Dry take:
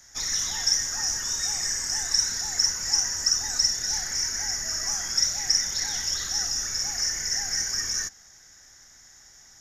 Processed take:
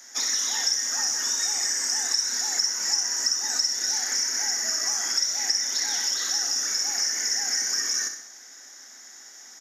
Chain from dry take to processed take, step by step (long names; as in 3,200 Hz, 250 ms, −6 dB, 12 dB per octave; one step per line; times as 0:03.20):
Butterworth high-pass 220 Hz 96 dB per octave
on a send: repeating echo 63 ms, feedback 45%, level −10 dB
on the sum: downward compressor 3 to 1, threshold −29 dBFS, peak gain reduction 9 dB
level +5.5 dB